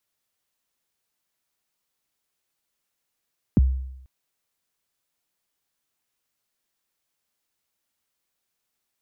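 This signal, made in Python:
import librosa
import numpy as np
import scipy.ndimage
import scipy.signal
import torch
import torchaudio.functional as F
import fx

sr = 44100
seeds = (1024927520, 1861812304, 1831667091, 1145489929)

y = fx.drum_kick(sr, seeds[0], length_s=0.49, level_db=-11.0, start_hz=310.0, end_hz=65.0, sweep_ms=24.0, decay_s=0.83, click=False)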